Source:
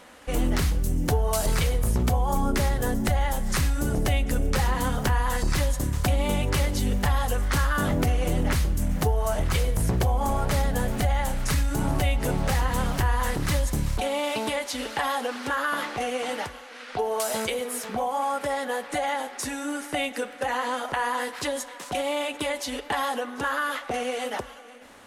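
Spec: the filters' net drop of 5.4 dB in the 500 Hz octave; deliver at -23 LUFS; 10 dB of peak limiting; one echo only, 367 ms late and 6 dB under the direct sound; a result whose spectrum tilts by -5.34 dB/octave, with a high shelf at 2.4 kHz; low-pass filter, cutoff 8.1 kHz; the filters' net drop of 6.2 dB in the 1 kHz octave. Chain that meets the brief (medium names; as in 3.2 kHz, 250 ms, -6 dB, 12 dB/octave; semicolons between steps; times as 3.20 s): low-pass 8.1 kHz; peaking EQ 500 Hz -4.5 dB; peaking EQ 1 kHz -5.5 dB; treble shelf 2.4 kHz -5.5 dB; peak limiter -24 dBFS; delay 367 ms -6 dB; trim +10 dB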